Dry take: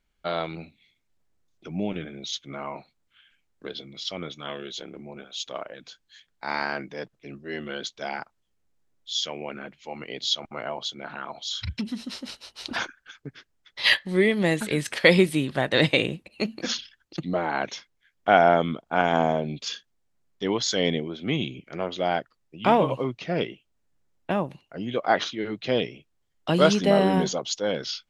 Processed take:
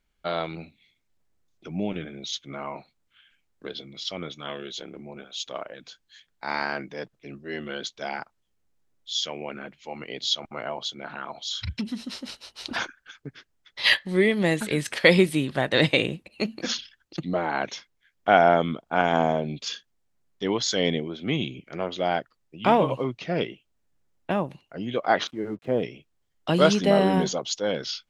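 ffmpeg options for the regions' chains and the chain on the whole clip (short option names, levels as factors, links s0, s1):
-filter_complex "[0:a]asettb=1/sr,asplit=3[s0][s1][s2];[s0]atrim=end=25.274[s3];[s1]atrim=start=25.27:end=25.83,asetpts=PTS-STARTPTS,afade=t=in:d=0.004:c=qsin,afade=t=out:st=0.556:d=0.004:c=qsin,lowpass=1100,aeval=exprs='sgn(val(0))*max(abs(val(0))-0.00133,0)':c=same[s4];[s2]atrim=start=25.826[s5];[s3][s4]acrossfade=d=0.004:c1=hsin:c2=qsin[s6];[s6][s5]acrossfade=d=0.004:c1=qsin:c2=hsin"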